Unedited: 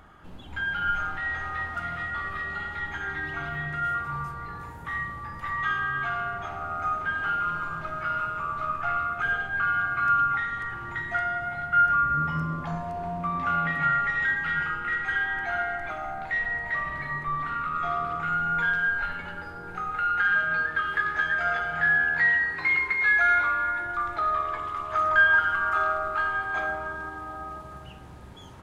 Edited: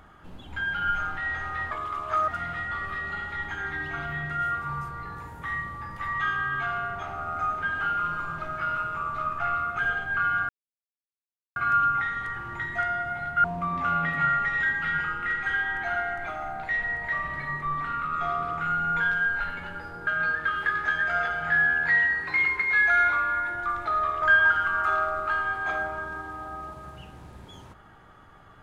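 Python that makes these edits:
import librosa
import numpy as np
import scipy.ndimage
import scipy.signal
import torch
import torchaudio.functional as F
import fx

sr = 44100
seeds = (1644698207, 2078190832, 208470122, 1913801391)

y = fx.edit(x, sr, fx.insert_silence(at_s=9.92, length_s=1.07),
    fx.cut(start_s=11.8, length_s=1.26),
    fx.cut(start_s=19.69, length_s=0.69),
    fx.move(start_s=24.53, length_s=0.57, to_s=1.71), tone=tone)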